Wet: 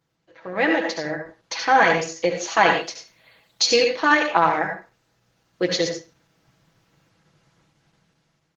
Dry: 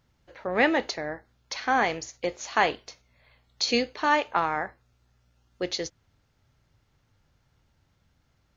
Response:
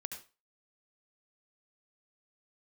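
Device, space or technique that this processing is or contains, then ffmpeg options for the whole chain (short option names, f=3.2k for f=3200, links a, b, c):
far-field microphone of a smart speaker: -filter_complex "[0:a]asettb=1/sr,asplit=3[a][b][c];[a]atrim=end=2.704[d];[b]atrim=start=2.7:end=3.66,asetpts=PTS-STARTPTS,afade=t=in:d=0.004:c=qsin,afade=t=out:st=0.956:d=0.004:c=qsin,aemphasis=mode=production:type=cd[e];[c]atrim=start=3.656[f];[d][e]acrossfade=d=0.004:c1=hsin:c2=qsin[g];[g][f]acrossfade=d=0.004:c1=qsin:c2=hsin,aecho=1:1:6.1:0.74[h];[1:a]atrim=start_sample=2205[i];[h][i]afir=irnorm=-1:irlink=0,highpass=140,dynaudnorm=f=400:g=5:m=11dB" -ar 48000 -c:a libopus -b:a 16k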